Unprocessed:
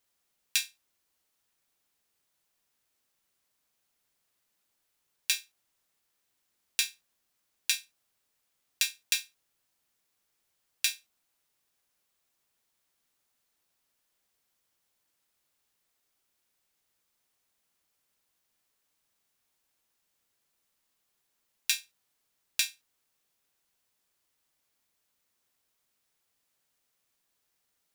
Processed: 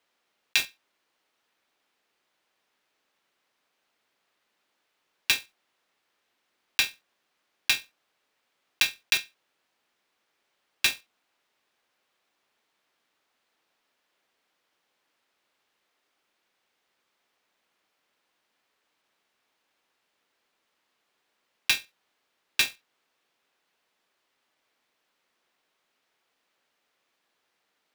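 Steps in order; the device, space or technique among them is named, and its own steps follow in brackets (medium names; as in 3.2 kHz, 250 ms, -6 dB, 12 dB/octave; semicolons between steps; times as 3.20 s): early digital voice recorder (band-pass 260–3400 Hz; block-companded coder 3-bit); trim +9 dB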